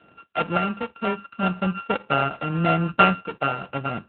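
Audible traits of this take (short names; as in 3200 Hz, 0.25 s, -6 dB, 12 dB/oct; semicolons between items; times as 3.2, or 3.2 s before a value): a buzz of ramps at a fixed pitch in blocks of 32 samples; random-step tremolo; AMR-NB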